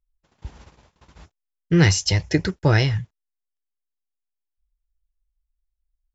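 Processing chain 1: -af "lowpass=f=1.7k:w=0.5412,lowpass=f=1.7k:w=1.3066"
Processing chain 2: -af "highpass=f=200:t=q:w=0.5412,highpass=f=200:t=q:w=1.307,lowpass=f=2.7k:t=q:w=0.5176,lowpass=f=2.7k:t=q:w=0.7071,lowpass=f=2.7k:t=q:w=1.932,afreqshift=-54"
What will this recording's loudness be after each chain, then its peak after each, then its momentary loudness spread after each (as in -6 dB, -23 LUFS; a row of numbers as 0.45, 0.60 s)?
-21.0, -25.0 LUFS; -4.5, -7.0 dBFS; 7, 10 LU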